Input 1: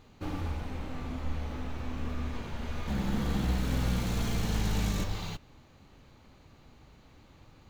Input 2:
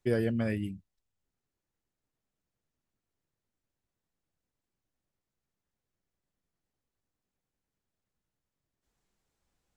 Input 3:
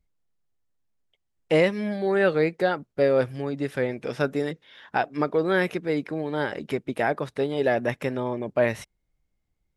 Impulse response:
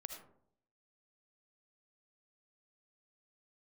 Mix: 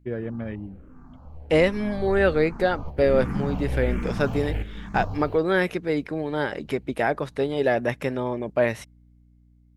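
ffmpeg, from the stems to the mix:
-filter_complex "[0:a]bandreject=frequency=3600:width=5.2,afwtdn=0.00794,asplit=2[link_01][link_02];[link_02]afreqshift=-1.3[link_03];[link_01][link_03]amix=inputs=2:normalize=1,volume=1.5dB[link_04];[1:a]afwtdn=0.00398,highshelf=frequency=4500:gain=-12,volume=-2dB[link_05];[2:a]aeval=exprs='val(0)+0.00251*(sin(2*PI*60*n/s)+sin(2*PI*2*60*n/s)/2+sin(2*PI*3*60*n/s)/3+sin(2*PI*4*60*n/s)/4+sin(2*PI*5*60*n/s)/5)':channel_layout=same,volume=-2.5dB,asplit=2[link_06][link_07];[link_07]apad=whole_len=339349[link_08];[link_04][link_08]sidechaingate=range=-11dB:threshold=-43dB:ratio=16:detection=peak[link_09];[link_09][link_05][link_06]amix=inputs=3:normalize=0,dynaudnorm=framelen=110:gausssize=17:maxgain=3.5dB"

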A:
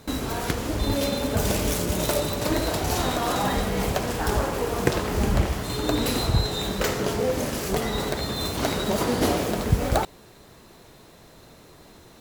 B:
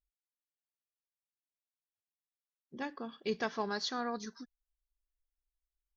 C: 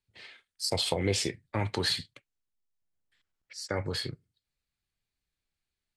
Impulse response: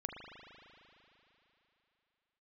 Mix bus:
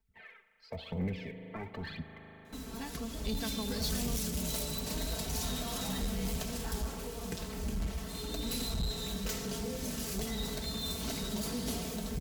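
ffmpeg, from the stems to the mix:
-filter_complex "[0:a]dynaudnorm=framelen=220:gausssize=7:maxgain=11.5dB,adelay=2450,volume=-15dB[link_01];[1:a]volume=2.5dB[link_02];[2:a]lowpass=frequency=2200:width=0.5412,lowpass=frequency=2200:width=1.3066,aphaser=in_gain=1:out_gain=1:delay=3.2:decay=0.69:speed=0.99:type=triangular,volume=-6.5dB,asplit=2[link_03][link_04];[link_04]volume=-5.5dB[link_05];[3:a]atrim=start_sample=2205[link_06];[link_05][link_06]afir=irnorm=-1:irlink=0[link_07];[link_01][link_02][link_03][link_07]amix=inputs=4:normalize=0,aecho=1:1:4.5:0.8,acrossover=split=210|3000[link_08][link_09][link_10];[link_09]acompressor=threshold=-50dB:ratio=2[link_11];[link_08][link_11][link_10]amix=inputs=3:normalize=0,asoftclip=type=tanh:threshold=-27.5dB"

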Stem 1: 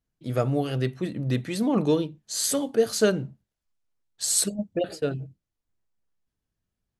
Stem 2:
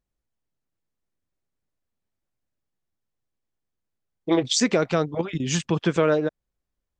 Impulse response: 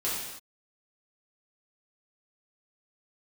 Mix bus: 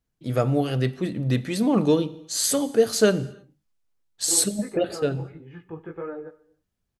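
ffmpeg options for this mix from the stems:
-filter_complex "[0:a]volume=2dB,asplit=2[link_01][link_02];[link_02]volume=-22.5dB[link_03];[1:a]lowpass=frequency=1800:width=0.5412,lowpass=frequency=1800:width=1.3066,aecho=1:1:2.4:0.52,flanger=delay=16.5:depth=2.9:speed=1.8,volume=-12.5dB,asplit=2[link_04][link_05];[link_05]volume=-22dB[link_06];[2:a]atrim=start_sample=2205[link_07];[link_03][link_06]amix=inputs=2:normalize=0[link_08];[link_08][link_07]afir=irnorm=-1:irlink=0[link_09];[link_01][link_04][link_09]amix=inputs=3:normalize=0"

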